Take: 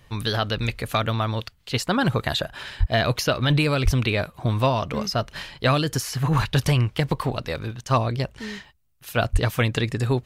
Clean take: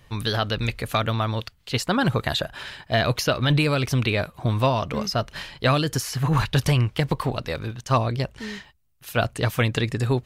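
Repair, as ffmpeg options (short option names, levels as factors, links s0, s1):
-filter_complex "[0:a]asplit=3[s0][s1][s2];[s0]afade=t=out:st=2.79:d=0.02[s3];[s1]highpass=f=140:w=0.5412,highpass=f=140:w=1.3066,afade=t=in:st=2.79:d=0.02,afade=t=out:st=2.91:d=0.02[s4];[s2]afade=t=in:st=2.91:d=0.02[s5];[s3][s4][s5]amix=inputs=3:normalize=0,asplit=3[s6][s7][s8];[s6]afade=t=out:st=3.84:d=0.02[s9];[s7]highpass=f=140:w=0.5412,highpass=f=140:w=1.3066,afade=t=in:st=3.84:d=0.02,afade=t=out:st=3.96:d=0.02[s10];[s8]afade=t=in:st=3.96:d=0.02[s11];[s9][s10][s11]amix=inputs=3:normalize=0,asplit=3[s12][s13][s14];[s12]afade=t=out:st=9.32:d=0.02[s15];[s13]highpass=f=140:w=0.5412,highpass=f=140:w=1.3066,afade=t=in:st=9.32:d=0.02,afade=t=out:st=9.44:d=0.02[s16];[s14]afade=t=in:st=9.44:d=0.02[s17];[s15][s16][s17]amix=inputs=3:normalize=0"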